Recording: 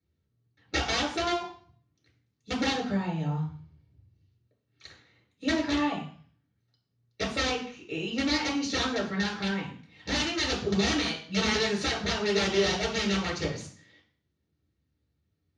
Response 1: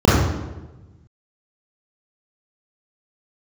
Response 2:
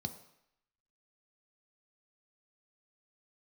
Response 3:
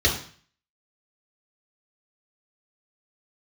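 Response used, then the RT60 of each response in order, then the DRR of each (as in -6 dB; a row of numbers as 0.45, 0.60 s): 3; 1.1, 0.75, 0.45 s; -7.5, 7.0, -5.0 dB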